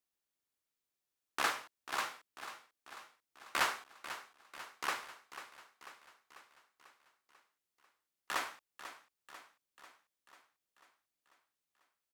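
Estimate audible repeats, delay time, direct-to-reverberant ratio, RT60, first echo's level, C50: 5, 0.493 s, none, none, -12.5 dB, none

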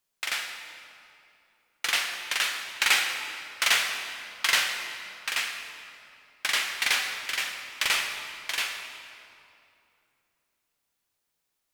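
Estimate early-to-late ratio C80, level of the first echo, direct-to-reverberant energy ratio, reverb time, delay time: 6.0 dB, none, 3.5 dB, 2.8 s, none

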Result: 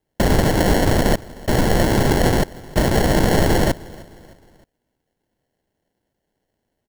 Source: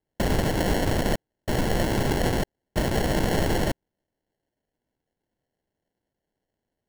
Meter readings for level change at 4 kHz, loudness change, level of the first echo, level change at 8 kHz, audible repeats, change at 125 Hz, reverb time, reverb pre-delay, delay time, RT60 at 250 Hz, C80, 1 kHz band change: +6.0 dB, +7.5 dB, -22.0 dB, +7.5 dB, 2, +7.5 dB, none, none, 0.308 s, none, none, +7.5 dB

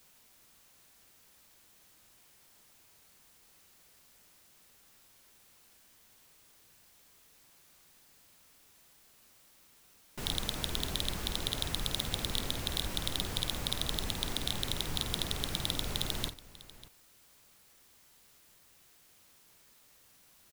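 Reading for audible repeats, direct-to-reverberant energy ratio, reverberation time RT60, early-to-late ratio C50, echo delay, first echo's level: 2, none, none, none, 50 ms, -11.0 dB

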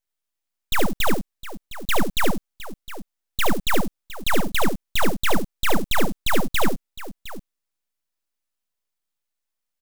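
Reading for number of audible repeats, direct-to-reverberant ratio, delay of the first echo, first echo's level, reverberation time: 2, none, 71 ms, -6.0 dB, none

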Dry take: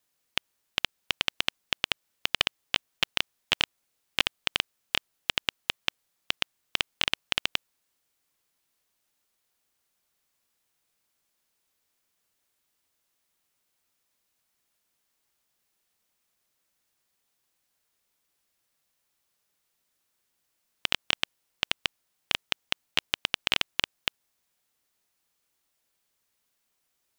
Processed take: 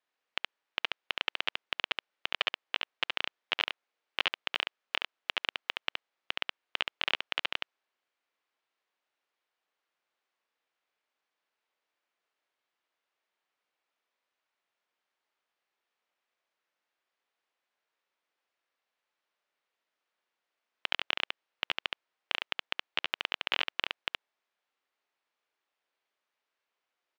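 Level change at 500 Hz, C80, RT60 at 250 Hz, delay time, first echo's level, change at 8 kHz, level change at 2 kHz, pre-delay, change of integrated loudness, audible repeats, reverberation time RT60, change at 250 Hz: -2.5 dB, none, none, 70 ms, -3.5 dB, -17.0 dB, -2.5 dB, none, -4.5 dB, 1, none, -9.0 dB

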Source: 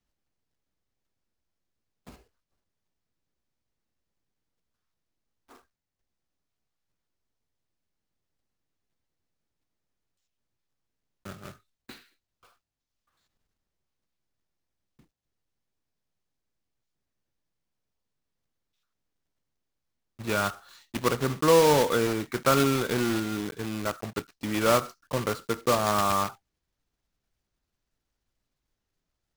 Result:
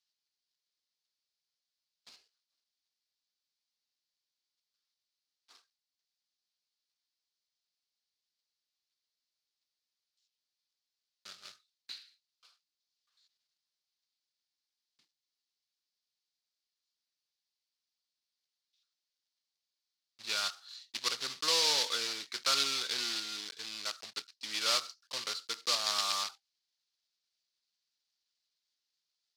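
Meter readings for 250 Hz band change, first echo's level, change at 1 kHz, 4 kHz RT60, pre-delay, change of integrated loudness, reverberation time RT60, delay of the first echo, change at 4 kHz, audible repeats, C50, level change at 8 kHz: -25.0 dB, none, -12.5 dB, none, none, -6.0 dB, none, none, +5.0 dB, none, none, -1.0 dB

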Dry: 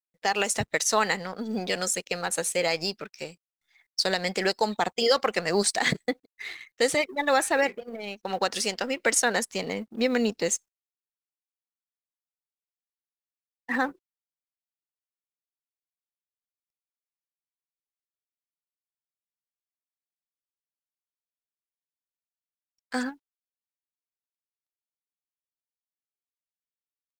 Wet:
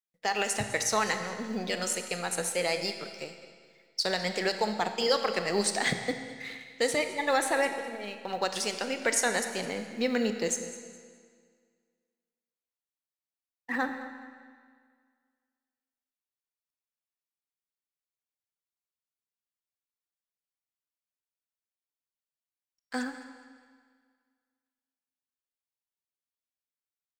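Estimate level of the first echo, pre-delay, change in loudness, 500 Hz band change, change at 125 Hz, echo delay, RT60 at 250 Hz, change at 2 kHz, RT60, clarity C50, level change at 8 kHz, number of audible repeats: -17.0 dB, 24 ms, -3.5 dB, -3.5 dB, -3.0 dB, 0.208 s, 1.9 s, -3.0 dB, 1.9 s, 7.5 dB, -3.5 dB, 2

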